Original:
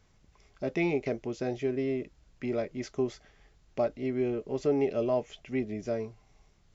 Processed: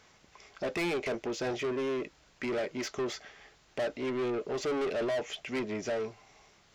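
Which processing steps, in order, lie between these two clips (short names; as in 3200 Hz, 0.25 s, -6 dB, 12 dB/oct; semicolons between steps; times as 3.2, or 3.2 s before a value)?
overdrive pedal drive 27 dB, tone 6000 Hz, clips at -15.5 dBFS; gain -9 dB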